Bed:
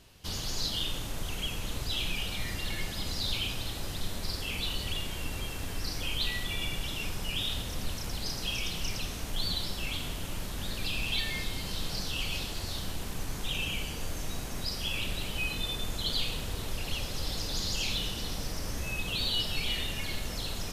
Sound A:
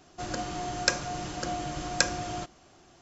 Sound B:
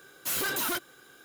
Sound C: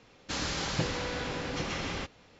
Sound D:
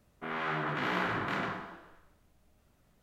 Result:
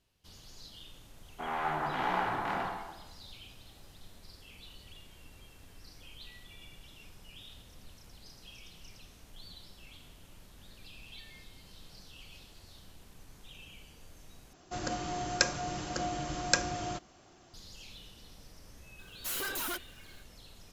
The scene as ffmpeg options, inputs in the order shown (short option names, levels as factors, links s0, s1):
-filter_complex "[0:a]volume=0.119[s0];[4:a]equalizer=f=810:t=o:w=0.55:g=14[s1];[2:a]highpass=220[s2];[s0]asplit=2[s3][s4];[s3]atrim=end=14.534[s5];[1:a]atrim=end=3.01,asetpts=PTS-STARTPTS,volume=0.794[s6];[s4]atrim=start=17.536[s7];[s1]atrim=end=3.02,asetpts=PTS-STARTPTS,volume=0.596,afade=t=in:d=0.004:c=hsin,afade=t=out:st=3.016:d=0.004:c=hsin,adelay=1170[s8];[s2]atrim=end=1.24,asetpts=PTS-STARTPTS,volume=0.501,afade=t=in:d=0.004:c=hsin,afade=t=out:st=1.236:d=0.004:c=hsin,adelay=18990[s9];[s5][s6]acrossfade=d=0.004:c1=hsin:c2=hsin[s10];[s10][s7]acrossfade=d=0.004:c1=hsin:c2=hsin[s11];[s11][s8][s9]amix=inputs=3:normalize=0"